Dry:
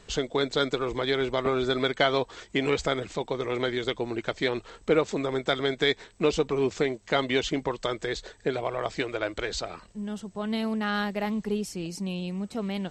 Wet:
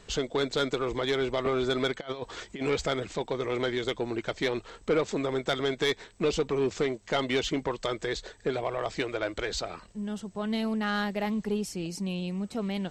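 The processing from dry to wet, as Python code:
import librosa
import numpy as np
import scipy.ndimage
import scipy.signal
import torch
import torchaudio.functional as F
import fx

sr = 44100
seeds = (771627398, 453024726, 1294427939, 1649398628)

y = fx.over_compress(x, sr, threshold_db=-30.0, ratio=-0.5, at=(1.99, 2.63), fade=0.02)
y = 10.0 ** (-18.5 / 20.0) * np.tanh(y / 10.0 ** (-18.5 / 20.0))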